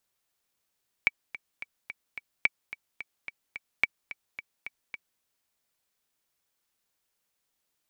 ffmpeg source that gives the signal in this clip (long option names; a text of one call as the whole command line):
ffmpeg -f lavfi -i "aevalsrc='pow(10,(-8-16*gte(mod(t,5*60/217),60/217))/20)*sin(2*PI*2290*mod(t,60/217))*exp(-6.91*mod(t,60/217)/0.03)':duration=4.14:sample_rate=44100" out.wav